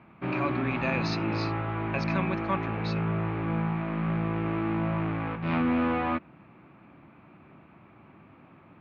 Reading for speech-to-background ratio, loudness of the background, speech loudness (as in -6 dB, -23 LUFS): -4.0 dB, -30.0 LUFS, -34.0 LUFS